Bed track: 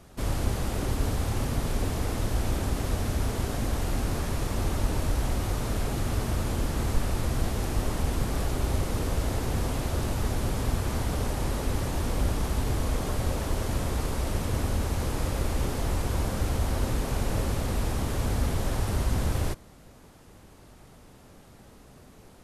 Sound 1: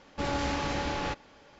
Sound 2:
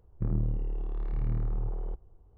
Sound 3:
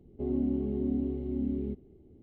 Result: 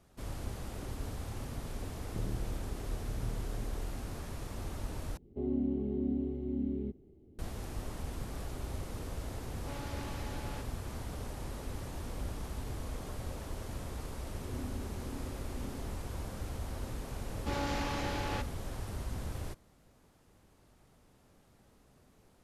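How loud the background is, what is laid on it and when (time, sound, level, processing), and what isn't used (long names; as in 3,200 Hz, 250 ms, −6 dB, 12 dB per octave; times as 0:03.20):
bed track −12.5 dB
0:01.94: mix in 2 −9.5 dB + low-pass with resonance 460 Hz, resonance Q 2.2
0:05.17: overwrite with 3 −3 dB
0:09.48: mix in 1 −14.5 dB
0:14.21: mix in 3 −16.5 dB
0:17.28: mix in 1 −5 dB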